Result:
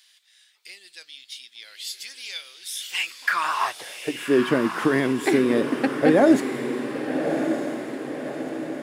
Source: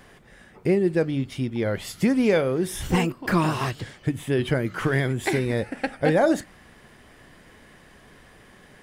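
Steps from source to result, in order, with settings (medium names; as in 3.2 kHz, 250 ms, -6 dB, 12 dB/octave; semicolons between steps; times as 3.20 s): high-pass sweep 3.9 kHz -> 260 Hz, 2.74–4.43 s; echo that smears into a reverb 1206 ms, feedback 53%, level -7 dB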